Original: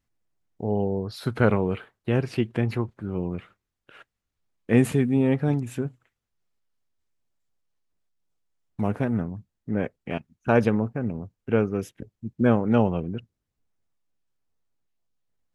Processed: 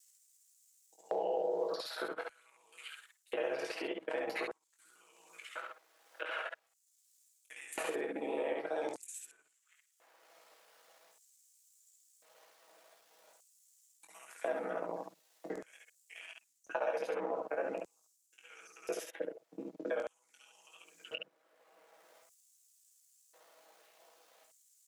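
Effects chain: time reversed locally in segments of 34 ms; high-pass 210 Hz 12 dB/octave; bass shelf 270 Hz -8.5 dB; reverse; compression 10:1, threshold -33 dBFS, peak gain reduction 15.5 dB; reverse; peak limiter -30.5 dBFS, peak gain reduction 10 dB; granular stretch 1.6×, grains 33 ms; vibrato 7 Hz 60 cents; LFO high-pass square 0.45 Hz 580–7400 Hz; early reflections 22 ms -6 dB, 69 ms -3.5 dB; three bands compressed up and down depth 70%; trim +5.5 dB

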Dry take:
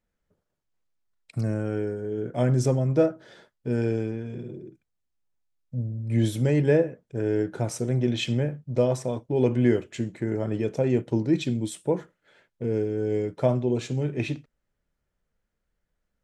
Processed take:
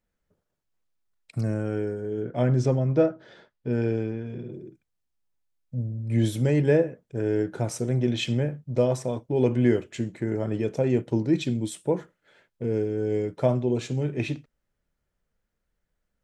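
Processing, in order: 2.24–4.52 s: low-pass 4.7 kHz 12 dB/octave

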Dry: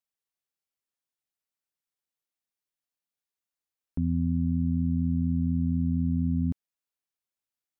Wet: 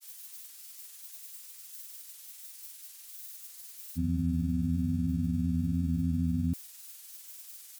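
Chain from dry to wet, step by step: zero-crossing glitches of -35.5 dBFS; granulator 100 ms, spray 35 ms, pitch spread up and down by 0 st; trim -2 dB

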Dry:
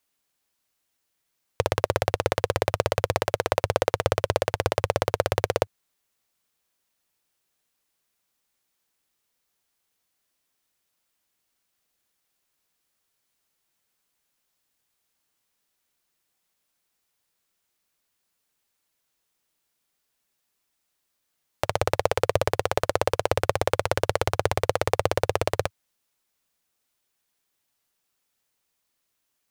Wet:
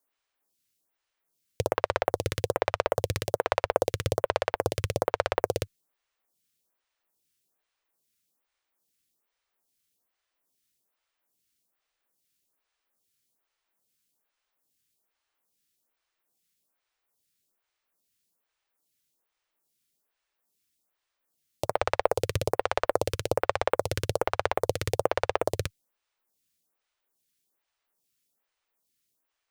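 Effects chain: lamp-driven phase shifter 1.2 Hz

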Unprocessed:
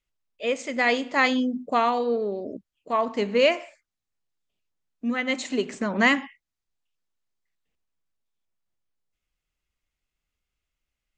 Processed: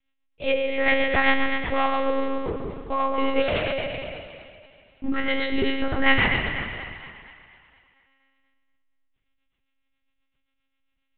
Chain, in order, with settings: spectral sustain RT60 1.36 s; in parallel at -0.5 dB: compression, threshold -33 dBFS, peak gain reduction 19 dB; on the sum: rotary cabinet horn 7.5 Hz; 3.41–5.09 s: hard clipper -24 dBFS, distortion -11 dB; two-band feedback delay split 620 Hz, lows 159 ms, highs 238 ms, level -9.5 dB; monotone LPC vocoder at 8 kHz 270 Hz

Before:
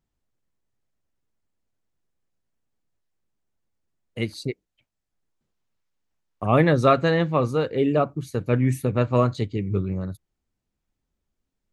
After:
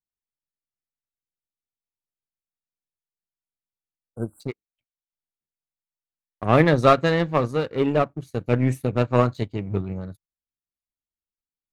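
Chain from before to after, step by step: power-law waveshaper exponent 1.4; spectral selection erased 4.09–4.41 s, 1.6–7.2 kHz; trim +4 dB

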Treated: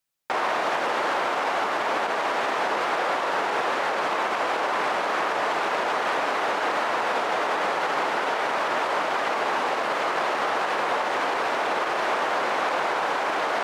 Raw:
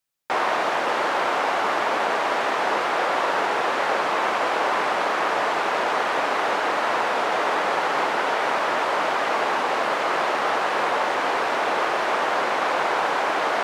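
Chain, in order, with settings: peak limiter -16 dBFS, peak gain reduction 7 dB

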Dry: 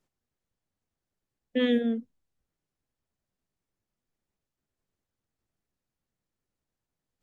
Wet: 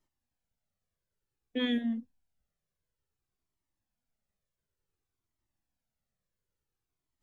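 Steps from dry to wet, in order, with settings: Shepard-style flanger falling 0.56 Hz; trim +1.5 dB

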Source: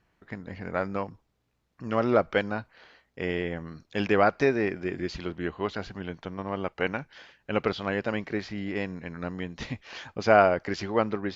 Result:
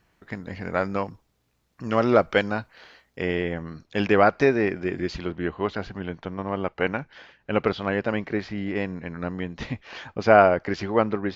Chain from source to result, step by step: treble shelf 4.8 kHz +6.5 dB, from 3.22 s -3.5 dB, from 5.19 s -10 dB; trim +4 dB

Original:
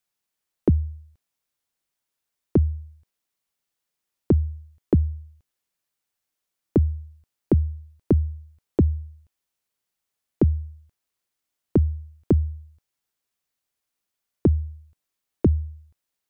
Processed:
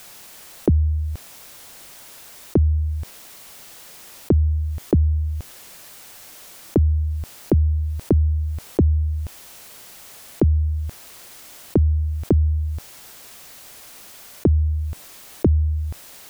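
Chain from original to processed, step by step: peaking EQ 640 Hz +3 dB 0.77 oct; level flattener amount 70%

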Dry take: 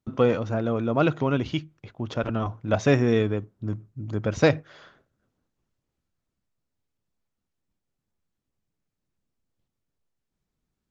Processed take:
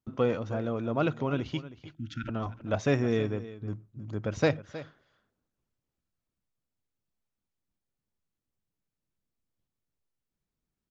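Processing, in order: spectral selection erased 1.94–2.28 s, 340–1300 Hz; delay 316 ms -15.5 dB; trim -6 dB

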